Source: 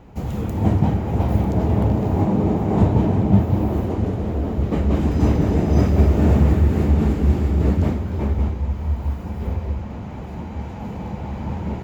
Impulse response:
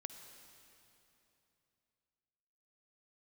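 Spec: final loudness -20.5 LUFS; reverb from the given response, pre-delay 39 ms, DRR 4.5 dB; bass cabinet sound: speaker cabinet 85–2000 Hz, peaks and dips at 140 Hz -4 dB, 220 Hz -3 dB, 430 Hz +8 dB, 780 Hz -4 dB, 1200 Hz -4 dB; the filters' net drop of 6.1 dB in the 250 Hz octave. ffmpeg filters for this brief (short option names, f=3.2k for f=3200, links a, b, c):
-filter_complex "[0:a]equalizer=f=250:t=o:g=-7,asplit=2[a][b];[1:a]atrim=start_sample=2205,adelay=39[c];[b][c]afir=irnorm=-1:irlink=0,volume=-1dB[d];[a][d]amix=inputs=2:normalize=0,highpass=f=85:w=0.5412,highpass=f=85:w=1.3066,equalizer=f=140:t=q:w=4:g=-4,equalizer=f=220:t=q:w=4:g=-3,equalizer=f=430:t=q:w=4:g=8,equalizer=f=780:t=q:w=4:g=-4,equalizer=f=1.2k:t=q:w=4:g=-4,lowpass=f=2k:w=0.5412,lowpass=f=2k:w=1.3066,volume=2dB"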